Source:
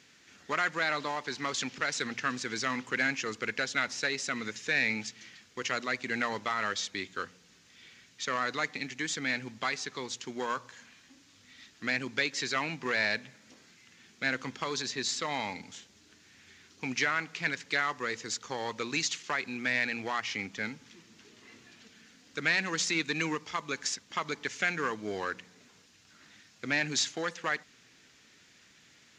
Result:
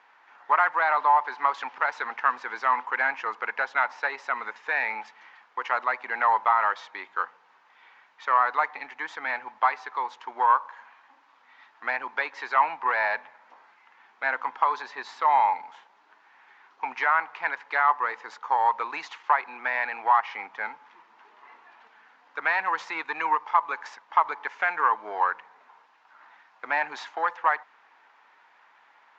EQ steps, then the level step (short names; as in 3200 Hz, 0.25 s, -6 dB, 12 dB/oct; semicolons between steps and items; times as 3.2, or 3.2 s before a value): resonant high-pass 900 Hz, resonance Q 4.9; LPF 1400 Hz 12 dB/oct; +6.5 dB